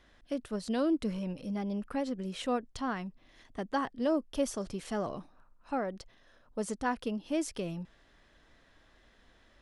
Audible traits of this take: noise floor -64 dBFS; spectral tilt -5.5 dB/octave

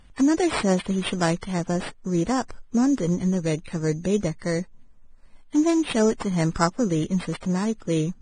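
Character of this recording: aliases and images of a low sample rate 6.4 kHz, jitter 0%; Vorbis

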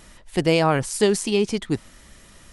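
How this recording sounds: noise floor -50 dBFS; spectral tilt -4.5 dB/octave

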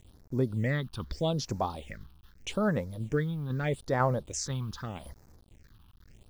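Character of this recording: a quantiser's noise floor 10-bit, dither none; phasing stages 6, 0.81 Hz, lowest notch 520–3100 Hz; tremolo saw down 2 Hz, depth 35%

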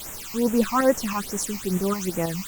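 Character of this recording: tremolo saw up 6.2 Hz, depth 50%; a quantiser's noise floor 6-bit, dither triangular; phasing stages 8, 2.4 Hz, lowest notch 450–4500 Hz; Opus

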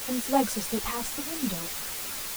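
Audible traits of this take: random-step tremolo 4.2 Hz, depth 70%; a quantiser's noise floor 6-bit, dither triangular; a shimmering, thickened sound

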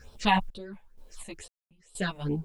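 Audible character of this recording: phasing stages 6, 2.2 Hz, lowest notch 350–1900 Hz; a quantiser's noise floor 12-bit, dither triangular; random-step tremolo 4.1 Hz, depth 100%; a shimmering, thickened sound

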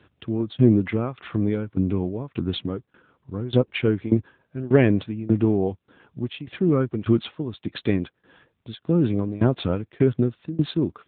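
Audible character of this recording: tremolo saw down 1.7 Hz, depth 90%; AMR-NB

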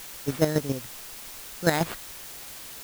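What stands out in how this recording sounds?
aliases and images of a low sample rate 5.8 kHz; chopped level 7.2 Hz, depth 65%, duty 20%; a quantiser's noise floor 8-bit, dither triangular

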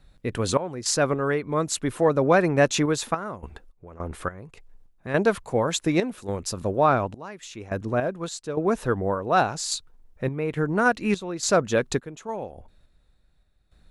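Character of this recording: random-step tremolo, depth 90%

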